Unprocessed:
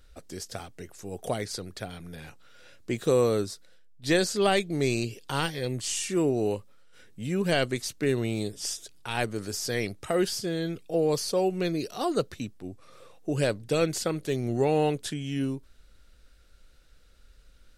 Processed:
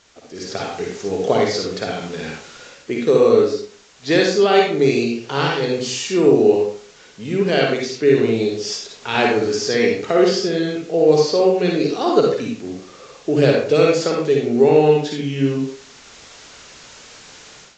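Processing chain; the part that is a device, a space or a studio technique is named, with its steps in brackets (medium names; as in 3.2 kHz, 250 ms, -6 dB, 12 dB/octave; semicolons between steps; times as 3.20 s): filmed off a television (band-pass 170–6200 Hz; peaking EQ 420 Hz +9.5 dB 0.24 oct; reverberation RT60 0.50 s, pre-delay 48 ms, DRR -1.5 dB; white noise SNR 26 dB; level rider gain up to 13.5 dB; trim -1 dB; AAC 48 kbps 16 kHz)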